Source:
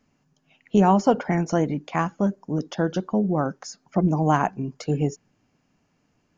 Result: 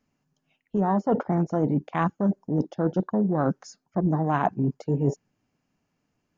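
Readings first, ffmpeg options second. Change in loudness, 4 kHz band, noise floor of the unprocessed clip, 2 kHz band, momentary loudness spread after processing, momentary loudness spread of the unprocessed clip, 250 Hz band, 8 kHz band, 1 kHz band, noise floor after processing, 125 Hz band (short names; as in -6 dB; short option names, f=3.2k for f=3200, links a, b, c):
-2.0 dB, under -10 dB, -69 dBFS, -4.5 dB, 4 LU, 10 LU, -2.0 dB, n/a, -4.0 dB, -78 dBFS, -1.0 dB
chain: -af "afwtdn=0.0355,areverse,acompressor=threshold=-29dB:ratio=12,areverse,volume=9dB"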